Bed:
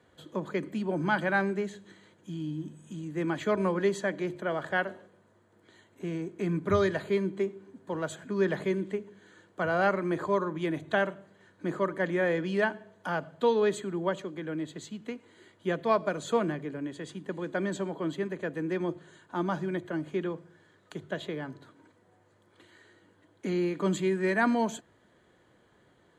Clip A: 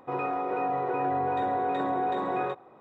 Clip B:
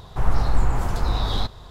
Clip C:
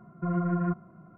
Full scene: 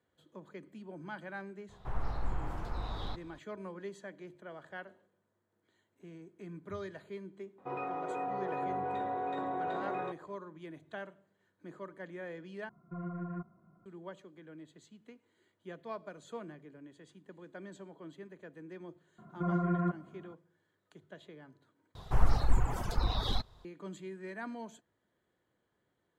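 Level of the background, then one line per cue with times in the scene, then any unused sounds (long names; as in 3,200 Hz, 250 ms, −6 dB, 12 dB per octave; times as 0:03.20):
bed −16.5 dB
0:01.69: mix in B −13 dB + bass and treble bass −3 dB, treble −11 dB
0:07.58: mix in A −8 dB
0:12.69: overwrite with C −12.5 dB
0:19.18: mix in C −1.5 dB + low-shelf EQ 100 Hz −10 dB
0:21.95: overwrite with B −5 dB + reverb reduction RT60 1.9 s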